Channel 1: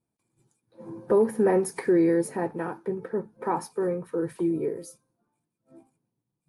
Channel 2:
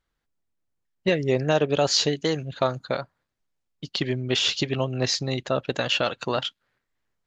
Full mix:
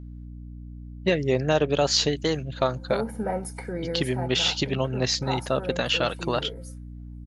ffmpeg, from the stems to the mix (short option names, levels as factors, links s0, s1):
-filter_complex "[0:a]aecho=1:1:1.4:0.74,adelay=1800,volume=0.562[s0];[1:a]volume=0.944[s1];[s0][s1]amix=inputs=2:normalize=0,aeval=exprs='val(0)+0.0126*(sin(2*PI*60*n/s)+sin(2*PI*2*60*n/s)/2+sin(2*PI*3*60*n/s)/3+sin(2*PI*4*60*n/s)/4+sin(2*PI*5*60*n/s)/5)':c=same"